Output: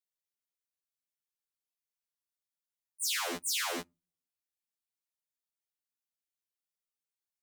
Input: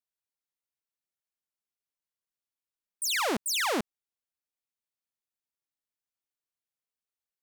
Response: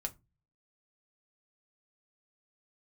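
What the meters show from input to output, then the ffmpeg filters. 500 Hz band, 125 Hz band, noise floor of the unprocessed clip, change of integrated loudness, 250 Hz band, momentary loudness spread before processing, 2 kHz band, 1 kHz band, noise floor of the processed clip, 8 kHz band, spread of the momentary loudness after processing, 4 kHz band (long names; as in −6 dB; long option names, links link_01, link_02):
−9.0 dB, −9.5 dB, below −85 dBFS, −4.0 dB, −10.0 dB, 6 LU, −6.0 dB, −8.0 dB, below −85 dBFS, −2.0 dB, 4 LU, −3.5 dB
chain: -filter_complex "[0:a]highshelf=frequency=2400:gain=8,asplit=2[link_01][link_02];[1:a]atrim=start_sample=2205[link_03];[link_02][link_03]afir=irnorm=-1:irlink=0,volume=-16dB[link_04];[link_01][link_04]amix=inputs=2:normalize=0,afftfilt=real='re*2*eq(mod(b,4),0)':imag='im*2*eq(mod(b,4),0)':win_size=2048:overlap=0.75,volume=-8dB"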